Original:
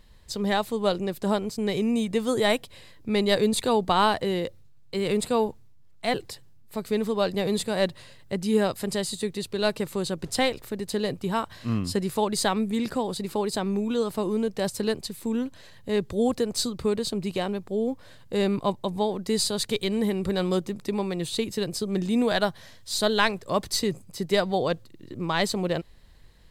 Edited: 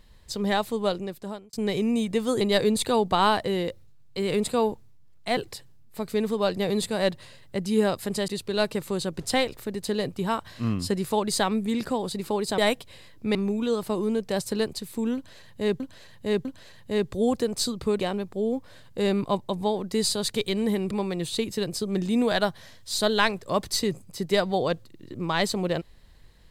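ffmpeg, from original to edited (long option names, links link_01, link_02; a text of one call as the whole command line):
ffmpeg -i in.wav -filter_complex "[0:a]asplit=10[link_01][link_02][link_03][link_04][link_05][link_06][link_07][link_08][link_09][link_10];[link_01]atrim=end=1.53,asetpts=PTS-STARTPTS,afade=type=out:start_time=0.75:duration=0.78[link_11];[link_02]atrim=start=1.53:end=2.412,asetpts=PTS-STARTPTS,afade=type=in:duration=0.004:curve=hsin[link_12];[link_03]atrim=start=3.178:end=9.052[link_13];[link_04]atrim=start=9.328:end=13.632[link_14];[link_05]atrim=start=2.408:end=3.182[link_15];[link_06]atrim=start=13.628:end=16.082[link_16];[link_07]atrim=start=15.428:end=16.082[link_17];[link_08]atrim=start=15.428:end=16.982[link_18];[link_09]atrim=start=17.348:end=20.262[link_19];[link_10]atrim=start=20.908[link_20];[link_11][link_12]concat=n=2:v=0:a=1[link_21];[link_21][link_13]acrossfade=duration=0.004:curve1=hsin:curve2=hsin[link_22];[link_22][link_14]acrossfade=duration=0.004:curve1=hsin:curve2=hsin[link_23];[link_23][link_15]acrossfade=duration=0.004:curve1=hsin:curve2=hsin[link_24];[link_24][link_16]acrossfade=duration=0.004:curve1=hsin:curve2=hsin[link_25];[link_25][link_17]acrossfade=duration=0.004:curve1=hsin:curve2=hsin[link_26];[link_26][link_18]acrossfade=duration=0.004:curve1=hsin:curve2=hsin[link_27];[link_27][link_19]acrossfade=duration=0.004:curve1=hsin:curve2=hsin[link_28];[link_28][link_20]acrossfade=duration=0.004:curve1=hsin:curve2=hsin" out.wav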